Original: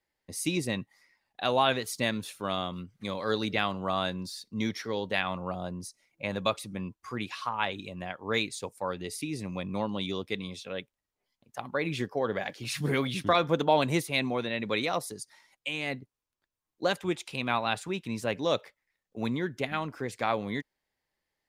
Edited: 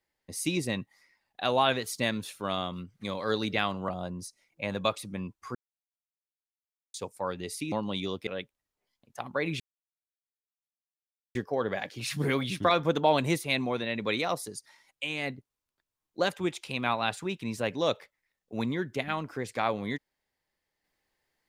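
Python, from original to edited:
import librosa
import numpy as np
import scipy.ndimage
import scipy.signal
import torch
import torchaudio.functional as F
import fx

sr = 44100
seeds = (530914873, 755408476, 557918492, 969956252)

y = fx.edit(x, sr, fx.cut(start_s=3.89, length_s=1.61),
    fx.silence(start_s=7.16, length_s=1.39),
    fx.cut(start_s=9.33, length_s=0.45),
    fx.cut(start_s=10.33, length_s=0.33),
    fx.insert_silence(at_s=11.99, length_s=1.75), tone=tone)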